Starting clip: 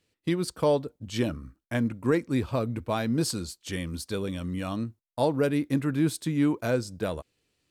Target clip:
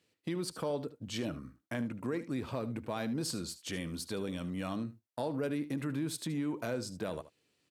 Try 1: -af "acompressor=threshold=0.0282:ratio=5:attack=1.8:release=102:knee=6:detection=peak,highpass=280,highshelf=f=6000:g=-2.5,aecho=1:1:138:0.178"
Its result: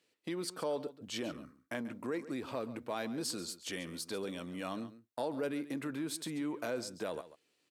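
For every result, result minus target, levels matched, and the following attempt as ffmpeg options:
echo 63 ms late; 125 Hz band -7.5 dB
-af "acompressor=threshold=0.0282:ratio=5:attack=1.8:release=102:knee=6:detection=peak,highpass=280,highshelf=f=6000:g=-2.5,aecho=1:1:75:0.178"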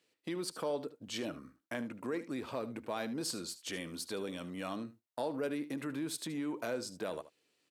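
125 Hz band -7.5 dB
-af "acompressor=threshold=0.0282:ratio=5:attack=1.8:release=102:knee=6:detection=peak,highpass=130,highshelf=f=6000:g=-2.5,aecho=1:1:75:0.178"

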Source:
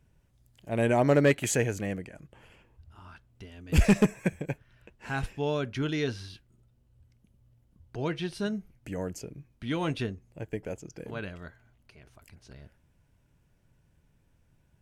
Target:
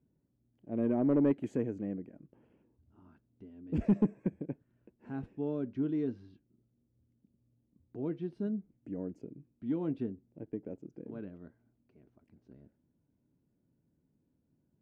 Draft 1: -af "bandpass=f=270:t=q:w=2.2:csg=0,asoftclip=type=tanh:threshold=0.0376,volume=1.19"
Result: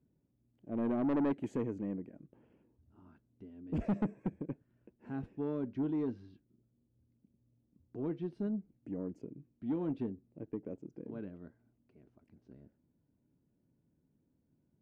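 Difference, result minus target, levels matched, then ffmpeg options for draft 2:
saturation: distortion +11 dB
-af "bandpass=f=270:t=q:w=2.2:csg=0,asoftclip=type=tanh:threshold=0.119,volume=1.19"

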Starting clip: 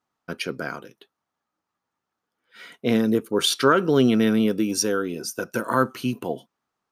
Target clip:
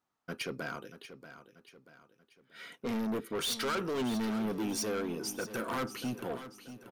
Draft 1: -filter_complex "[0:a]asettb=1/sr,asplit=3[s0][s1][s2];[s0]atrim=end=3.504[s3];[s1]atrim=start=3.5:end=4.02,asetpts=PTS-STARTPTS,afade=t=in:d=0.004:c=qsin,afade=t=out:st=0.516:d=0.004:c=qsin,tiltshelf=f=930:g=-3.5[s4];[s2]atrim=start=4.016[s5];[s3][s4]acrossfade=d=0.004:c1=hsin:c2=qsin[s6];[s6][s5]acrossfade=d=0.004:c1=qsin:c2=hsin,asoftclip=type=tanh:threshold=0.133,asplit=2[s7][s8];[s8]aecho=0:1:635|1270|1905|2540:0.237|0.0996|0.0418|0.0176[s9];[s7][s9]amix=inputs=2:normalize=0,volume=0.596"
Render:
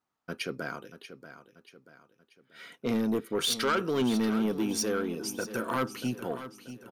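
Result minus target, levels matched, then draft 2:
saturation: distortion -6 dB
-filter_complex "[0:a]asettb=1/sr,asplit=3[s0][s1][s2];[s0]atrim=end=3.504[s3];[s1]atrim=start=3.5:end=4.02,asetpts=PTS-STARTPTS,afade=t=in:d=0.004:c=qsin,afade=t=out:st=0.516:d=0.004:c=qsin,tiltshelf=f=930:g=-3.5[s4];[s2]atrim=start=4.016[s5];[s3][s4]acrossfade=d=0.004:c1=hsin:c2=qsin[s6];[s6][s5]acrossfade=d=0.004:c1=qsin:c2=hsin,asoftclip=type=tanh:threshold=0.0501,asplit=2[s7][s8];[s8]aecho=0:1:635|1270|1905|2540:0.237|0.0996|0.0418|0.0176[s9];[s7][s9]amix=inputs=2:normalize=0,volume=0.596"

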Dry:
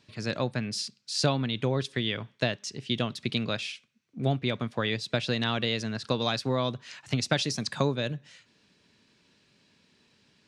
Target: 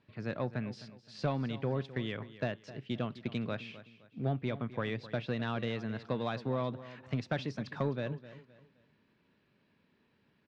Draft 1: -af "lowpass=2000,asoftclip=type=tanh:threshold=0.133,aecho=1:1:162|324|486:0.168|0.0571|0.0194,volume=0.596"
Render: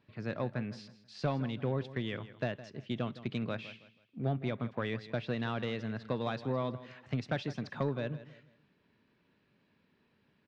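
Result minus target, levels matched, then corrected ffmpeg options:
echo 97 ms early
-af "lowpass=2000,asoftclip=type=tanh:threshold=0.133,aecho=1:1:259|518|777:0.168|0.0571|0.0194,volume=0.596"

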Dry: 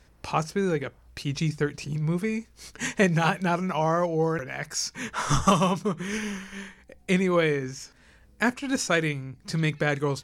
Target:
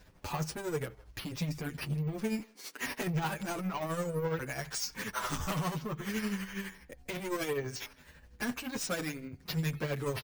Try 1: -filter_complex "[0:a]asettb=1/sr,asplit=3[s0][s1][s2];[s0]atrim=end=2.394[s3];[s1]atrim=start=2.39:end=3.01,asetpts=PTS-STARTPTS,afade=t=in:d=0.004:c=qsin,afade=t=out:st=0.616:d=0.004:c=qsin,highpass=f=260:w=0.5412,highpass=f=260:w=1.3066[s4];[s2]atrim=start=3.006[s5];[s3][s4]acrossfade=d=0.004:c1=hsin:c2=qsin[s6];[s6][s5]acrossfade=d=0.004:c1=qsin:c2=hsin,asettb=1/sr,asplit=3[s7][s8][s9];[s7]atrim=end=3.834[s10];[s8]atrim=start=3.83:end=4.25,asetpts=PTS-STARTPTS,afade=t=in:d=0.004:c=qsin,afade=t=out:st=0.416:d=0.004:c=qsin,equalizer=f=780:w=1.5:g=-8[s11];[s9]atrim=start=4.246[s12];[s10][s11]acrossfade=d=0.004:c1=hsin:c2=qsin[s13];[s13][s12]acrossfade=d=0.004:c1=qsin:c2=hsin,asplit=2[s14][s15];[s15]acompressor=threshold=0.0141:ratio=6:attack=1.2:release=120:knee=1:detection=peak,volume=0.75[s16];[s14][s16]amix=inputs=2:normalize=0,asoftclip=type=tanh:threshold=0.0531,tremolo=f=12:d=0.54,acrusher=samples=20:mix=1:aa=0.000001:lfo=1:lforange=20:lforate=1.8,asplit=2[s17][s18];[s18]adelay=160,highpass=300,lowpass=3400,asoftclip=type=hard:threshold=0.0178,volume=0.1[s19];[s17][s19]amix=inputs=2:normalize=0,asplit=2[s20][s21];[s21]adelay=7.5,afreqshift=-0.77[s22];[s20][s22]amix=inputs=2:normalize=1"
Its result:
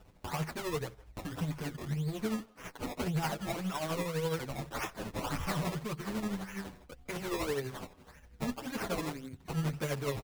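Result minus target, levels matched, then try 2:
decimation with a swept rate: distortion +9 dB; compression: peak gain reduction +5.5 dB
-filter_complex "[0:a]asettb=1/sr,asplit=3[s0][s1][s2];[s0]atrim=end=2.394[s3];[s1]atrim=start=2.39:end=3.01,asetpts=PTS-STARTPTS,afade=t=in:d=0.004:c=qsin,afade=t=out:st=0.616:d=0.004:c=qsin,highpass=f=260:w=0.5412,highpass=f=260:w=1.3066[s4];[s2]atrim=start=3.006[s5];[s3][s4]acrossfade=d=0.004:c1=hsin:c2=qsin[s6];[s6][s5]acrossfade=d=0.004:c1=qsin:c2=hsin,asettb=1/sr,asplit=3[s7][s8][s9];[s7]atrim=end=3.834[s10];[s8]atrim=start=3.83:end=4.25,asetpts=PTS-STARTPTS,afade=t=in:d=0.004:c=qsin,afade=t=out:st=0.416:d=0.004:c=qsin,equalizer=f=780:w=1.5:g=-8[s11];[s9]atrim=start=4.246[s12];[s10][s11]acrossfade=d=0.004:c1=hsin:c2=qsin[s13];[s13][s12]acrossfade=d=0.004:c1=qsin:c2=hsin,asplit=2[s14][s15];[s15]acompressor=threshold=0.0299:ratio=6:attack=1.2:release=120:knee=1:detection=peak,volume=0.75[s16];[s14][s16]amix=inputs=2:normalize=0,asoftclip=type=tanh:threshold=0.0531,tremolo=f=12:d=0.54,acrusher=samples=4:mix=1:aa=0.000001:lfo=1:lforange=4:lforate=1.8,asplit=2[s17][s18];[s18]adelay=160,highpass=300,lowpass=3400,asoftclip=type=hard:threshold=0.0178,volume=0.1[s19];[s17][s19]amix=inputs=2:normalize=0,asplit=2[s20][s21];[s21]adelay=7.5,afreqshift=-0.77[s22];[s20][s22]amix=inputs=2:normalize=1"

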